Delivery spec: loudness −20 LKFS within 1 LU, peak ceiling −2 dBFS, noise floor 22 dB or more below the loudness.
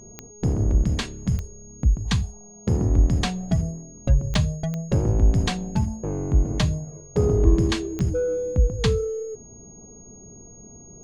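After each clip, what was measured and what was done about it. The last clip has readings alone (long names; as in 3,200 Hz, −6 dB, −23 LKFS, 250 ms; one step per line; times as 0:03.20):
number of clicks 5; interfering tone 6,600 Hz; level of the tone −46 dBFS; integrated loudness −24.0 LKFS; sample peak −5.0 dBFS; target loudness −20.0 LKFS
→ click removal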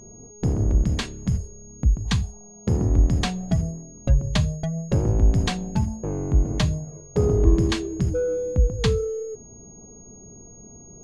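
number of clicks 0; interfering tone 6,600 Hz; level of the tone −46 dBFS
→ notch filter 6,600 Hz, Q 30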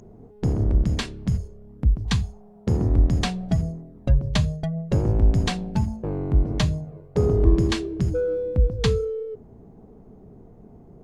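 interfering tone none found; integrated loudness −24.0 LKFS; sample peak −5.0 dBFS; target loudness −20.0 LKFS
→ level +4 dB
brickwall limiter −2 dBFS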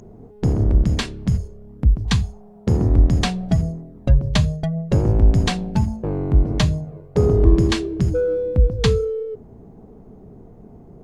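integrated loudness −20.0 LKFS; sample peak −2.0 dBFS; background noise floor −44 dBFS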